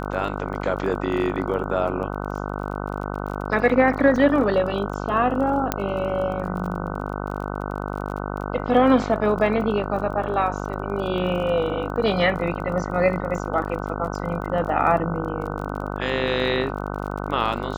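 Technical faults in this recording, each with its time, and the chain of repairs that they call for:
mains buzz 50 Hz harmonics 30 −29 dBFS
surface crackle 28 per second −32 dBFS
0:04.16: drop-out 3 ms
0:05.72: click −5 dBFS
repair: click removal
hum removal 50 Hz, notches 30
repair the gap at 0:04.16, 3 ms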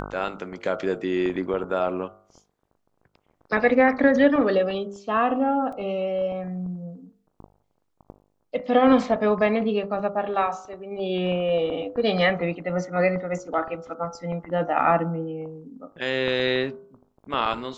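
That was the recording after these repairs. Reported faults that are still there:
0:05.72: click

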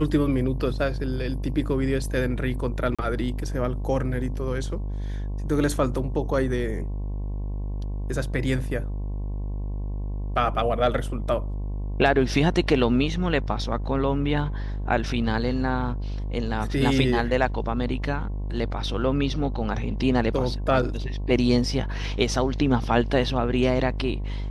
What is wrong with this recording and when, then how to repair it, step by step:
mains buzz 50 Hz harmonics 22 −29 dBFS
0:02.95–0:02.99: drop-out 36 ms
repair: hum removal 50 Hz, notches 22
repair the gap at 0:02.95, 36 ms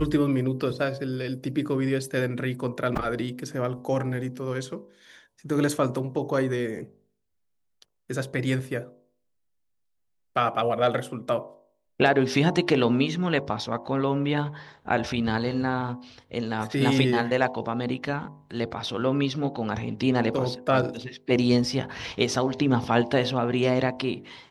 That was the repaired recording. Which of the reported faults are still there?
none of them is left

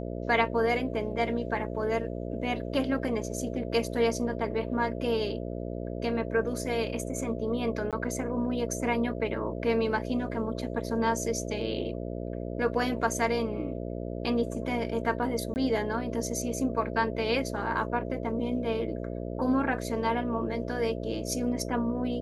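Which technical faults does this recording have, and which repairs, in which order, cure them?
mains buzz 60 Hz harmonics 11 −35 dBFS
0:07.91–0:07.93: drop-out 17 ms
0:15.54–0:15.56: drop-out 19 ms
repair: hum removal 60 Hz, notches 11
repair the gap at 0:07.91, 17 ms
repair the gap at 0:15.54, 19 ms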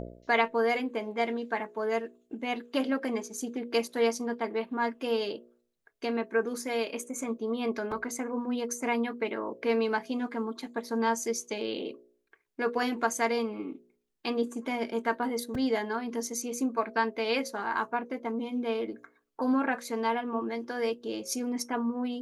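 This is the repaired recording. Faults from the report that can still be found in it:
none of them is left

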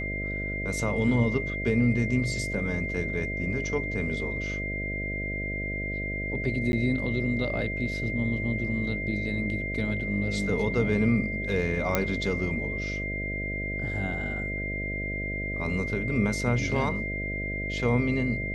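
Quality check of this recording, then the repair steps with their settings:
mains buzz 50 Hz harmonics 13 −34 dBFS
whistle 2,100 Hz −32 dBFS
0:06.72–0:06.73: drop-out 11 ms
0:11.95: click −8 dBFS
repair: click removal
hum removal 50 Hz, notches 13
notch filter 2,100 Hz, Q 30
repair the gap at 0:06.72, 11 ms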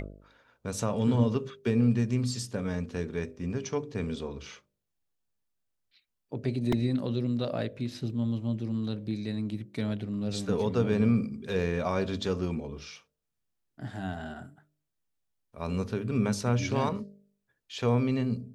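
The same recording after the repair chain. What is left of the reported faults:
0:11.95: click

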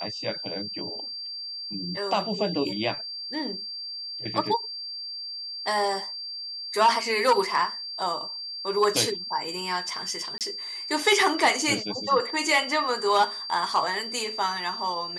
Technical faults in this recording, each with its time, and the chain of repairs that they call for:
whistle 4,700 Hz −33 dBFS
0:10.38–0:10.41: drop-out 28 ms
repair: notch filter 4,700 Hz, Q 30
repair the gap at 0:10.38, 28 ms

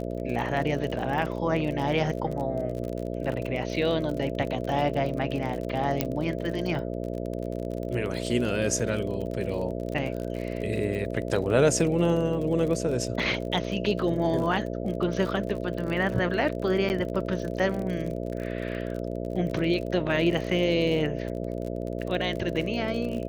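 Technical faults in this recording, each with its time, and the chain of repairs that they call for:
mains buzz 60 Hz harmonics 11 −32 dBFS
surface crackle 38 per second −32 dBFS
0:06.01: click −9 dBFS
0:16.89–0:16.90: drop-out 9.6 ms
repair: click removal
hum removal 60 Hz, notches 11
repair the gap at 0:16.89, 9.6 ms

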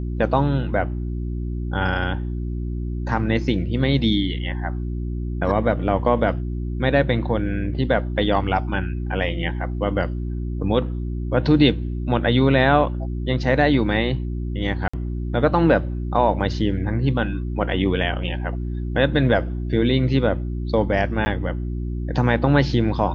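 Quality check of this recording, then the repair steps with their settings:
mains hum 60 Hz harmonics 6 −26 dBFS
0:14.88–0:14.94: drop-out 55 ms
0:21.25–0:21.26: drop-out 10 ms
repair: hum removal 60 Hz, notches 6
repair the gap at 0:14.88, 55 ms
repair the gap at 0:21.25, 10 ms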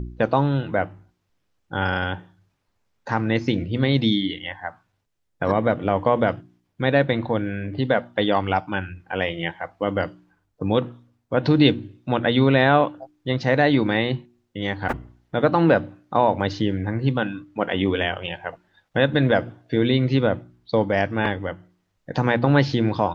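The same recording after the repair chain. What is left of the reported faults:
none of them is left

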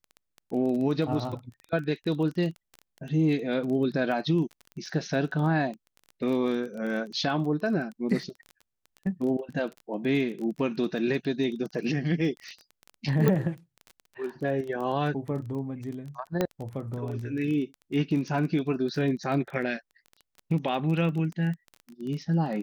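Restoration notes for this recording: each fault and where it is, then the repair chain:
surface crackle 20 per second −34 dBFS
0:13.28: click −12 dBFS
0:16.41: click −12 dBFS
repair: click removal

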